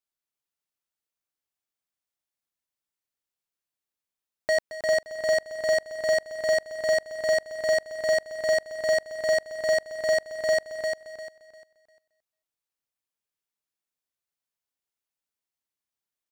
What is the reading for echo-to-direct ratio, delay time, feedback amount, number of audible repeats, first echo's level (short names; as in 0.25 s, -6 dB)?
-4.0 dB, 0.222 s, no steady repeat, 8, -14.5 dB